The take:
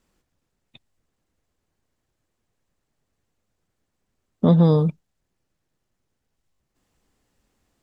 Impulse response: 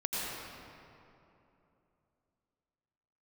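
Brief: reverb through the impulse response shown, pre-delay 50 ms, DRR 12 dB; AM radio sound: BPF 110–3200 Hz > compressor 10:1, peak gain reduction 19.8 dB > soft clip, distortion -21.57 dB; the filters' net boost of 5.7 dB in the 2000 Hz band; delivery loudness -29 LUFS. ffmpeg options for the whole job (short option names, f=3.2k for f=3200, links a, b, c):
-filter_complex "[0:a]equalizer=f=2k:t=o:g=8,asplit=2[a][b];[1:a]atrim=start_sample=2205,adelay=50[c];[b][c]afir=irnorm=-1:irlink=0,volume=-18.5dB[d];[a][d]amix=inputs=2:normalize=0,highpass=110,lowpass=3.2k,acompressor=threshold=-31dB:ratio=10,asoftclip=threshold=-24dB,volume=9.5dB"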